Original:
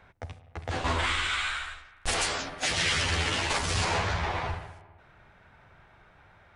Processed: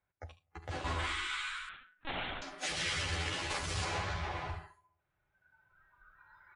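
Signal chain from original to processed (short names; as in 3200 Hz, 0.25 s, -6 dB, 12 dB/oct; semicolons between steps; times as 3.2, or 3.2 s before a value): recorder AGC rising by 5.8 dB/s; notch comb 230 Hz; spectral noise reduction 21 dB; on a send: echo 74 ms -12.5 dB; 1.69–2.42 on the sum: LPC vocoder at 8 kHz pitch kept; gain -7.5 dB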